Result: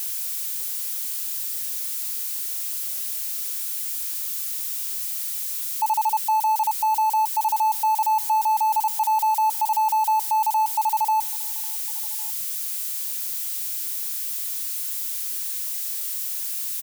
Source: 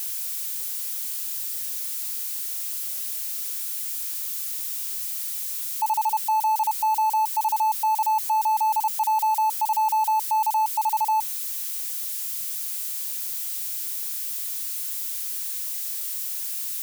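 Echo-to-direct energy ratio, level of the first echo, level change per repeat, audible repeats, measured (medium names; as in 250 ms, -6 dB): -21.5 dB, -22.5 dB, -5.0 dB, 2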